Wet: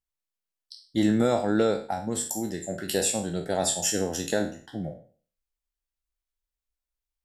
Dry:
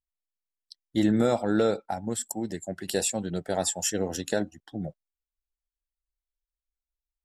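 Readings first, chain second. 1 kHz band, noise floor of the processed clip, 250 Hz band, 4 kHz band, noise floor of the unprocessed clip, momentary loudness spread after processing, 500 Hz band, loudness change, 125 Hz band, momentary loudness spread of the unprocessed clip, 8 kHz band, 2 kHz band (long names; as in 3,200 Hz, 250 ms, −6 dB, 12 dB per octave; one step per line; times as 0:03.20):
+1.5 dB, below −85 dBFS, +0.5 dB, +2.5 dB, below −85 dBFS, 10 LU, +1.0 dB, +1.5 dB, +0.5 dB, 12 LU, +2.5 dB, +2.0 dB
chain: peak hold with a decay on every bin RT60 0.43 s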